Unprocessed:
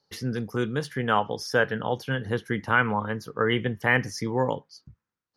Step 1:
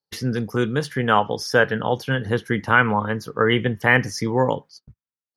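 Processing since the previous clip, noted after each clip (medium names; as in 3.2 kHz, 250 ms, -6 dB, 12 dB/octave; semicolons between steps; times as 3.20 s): gate -46 dBFS, range -23 dB; trim +5.5 dB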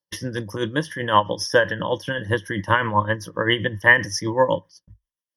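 rippled EQ curve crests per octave 1.2, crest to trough 14 dB; tremolo 7.7 Hz, depth 59%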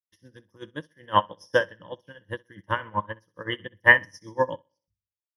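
on a send: feedback delay 63 ms, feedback 48%, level -11 dB; on the sum: upward expansion 2.5:1, over -34 dBFS; trim +1 dB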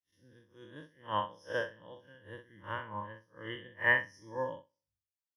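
spectral blur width 100 ms; trim -6.5 dB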